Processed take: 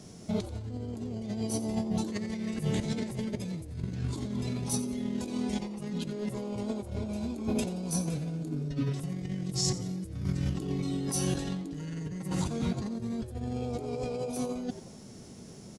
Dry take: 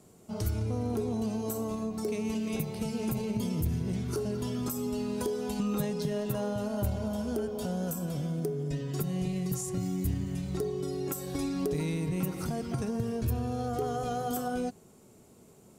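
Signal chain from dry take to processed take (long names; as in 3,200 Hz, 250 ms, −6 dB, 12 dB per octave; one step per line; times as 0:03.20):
formants moved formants −5 semitones
compressor whose output falls as the input rises −36 dBFS, ratio −0.5
echo with shifted repeats 88 ms, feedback 37%, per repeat +140 Hz, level −15 dB
level +4 dB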